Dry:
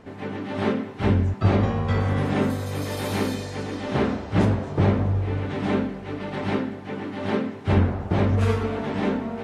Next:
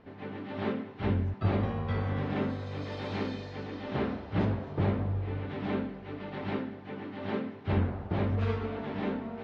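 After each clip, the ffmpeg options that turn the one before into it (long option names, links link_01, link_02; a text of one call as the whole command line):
ffmpeg -i in.wav -af "lowpass=frequency=4500:width=0.5412,lowpass=frequency=4500:width=1.3066,volume=-8.5dB" out.wav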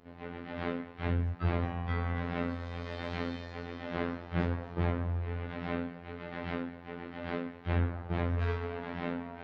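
ffmpeg -i in.wav -af "afftfilt=real='hypot(re,im)*cos(PI*b)':imag='0':win_size=2048:overlap=0.75,adynamicequalizer=threshold=0.00158:dfrequency=1700:dqfactor=1.1:tfrequency=1700:tqfactor=1.1:attack=5:release=100:ratio=0.375:range=2.5:mode=boostabove:tftype=bell" out.wav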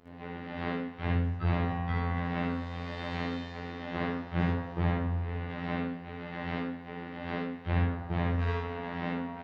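ffmpeg -i in.wav -af "aecho=1:1:57|76:0.708|0.631" out.wav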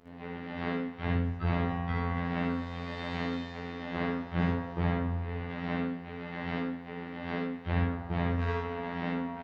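ffmpeg -i in.wav -filter_complex "[0:a]asplit=2[link_01][link_02];[link_02]adelay=16,volume=-10.5dB[link_03];[link_01][link_03]amix=inputs=2:normalize=0" out.wav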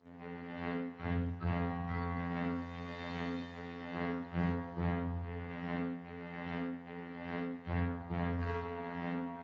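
ffmpeg -i in.wav -af "volume=-5.5dB" -ar 16000 -c:a libspeex -b:a 13k out.spx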